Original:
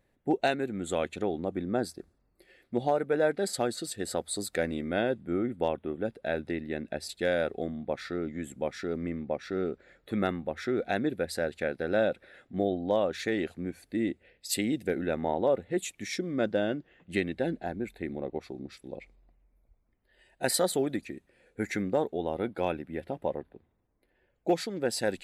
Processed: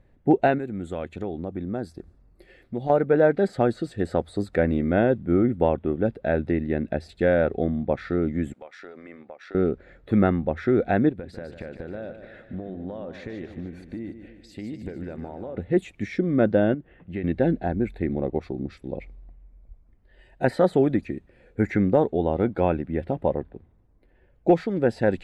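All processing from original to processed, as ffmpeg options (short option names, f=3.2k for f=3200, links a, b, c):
-filter_complex "[0:a]asettb=1/sr,asplit=3[a][b][c];[a]atrim=end=0.584[d];[b]atrim=start=0.58:end=2.9,asetpts=PTS-STARTPTS,afade=t=in:d=0.004:c=qsin,afade=t=out:st=2.316:d=0.004:c=qsin,highshelf=f=6.5k:g=8,acompressor=threshold=-51dB:ratio=1.5:attack=3.2:release=140:knee=1:detection=peak[e];[c]atrim=start=2.896[f];[d][e]acrossfade=d=0.004:c1=hsin:c2=qsin[g];[g][f]acrossfade=d=0.004:c1=qsin:c2=hsin,asettb=1/sr,asplit=3[h][i][j];[h]atrim=end=8.534[k];[i]atrim=start=8.53:end=9.55,asetpts=PTS-STARTPTS,afade=t=in:d=0.004:c=qsin,afade=t=out:st=1.016:d=0.004:c=qsin,highpass=710,acompressor=threshold=-42dB:ratio=12:attack=3.2:release=140:knee=1:detection=peak,tremolo=f=92:d=0.4[l];[j]atrim=start=9.546[m];[k][l]acrossfade=d=0.004:c1=hsin:c2=qsin[n];[n][m]acrossfade=d=0.004:c1=qsin:c2=hsin,asettb=1/sr,asplit=3[o][p][q];[o]atrim=end=11.094[r];[p]atrim=start=11.09:end=15.57,asetpts=PTS-STARTPTS,afade=t=in:d=0.004:c=qsin,afade=t=out:st=4.476:d=0.004:c=qsin,acompressor=threshold=-42dB:ratio=5:attack=3.2:release=140:knee=1:detection=peak,highshelf=f=8.4k:g=-7.5,aecho=1:1:148|296|444|592|740|888:0.316|0.168|0.0888|0.0471|0.025|0.0132,atrim=end_sample=197568[s];[q]atrim=start=15.566[t];[r][s]acrossfade=d=0.004:c1=hsin:c2=qsin[u];[u][t]acrossfade=d=0.004:c1=qsin:c2=hsin,asettb=1/sr,asplit=3[v][w][x];[v]atrim=end=16.744[y];[w]atrim=start=16.74:end=17.24,asetpts=PTS-STARTPTS,afade=t=in:d=0.004:c=qsin,afade=t=out:st=0.496:d=0.004:c=qsin,lowpass=3k,acompressor=threshold=-54dB:ratio=1.5:attack=3.2:release=140:knee=1:detection=peak[z];[x]atrim=start=17.236[aa];[y][z]acrossfade=d=0.004:c1=hsin:c2=qsin[ab];[ab][aa]acrossfade=d=0.004:c1=qsin:c2=hsin,aemphasis=mode=reproduction:type=75fm,acrossover=split=2600[ac][ad];[ad]acompressor=threshold=-56dB:ratio=4:attack=1:release=60[ae];[ac][ae]amix=inputs=2:normalize=0,lowshelf=f=150:g=11.5,volume=6dB"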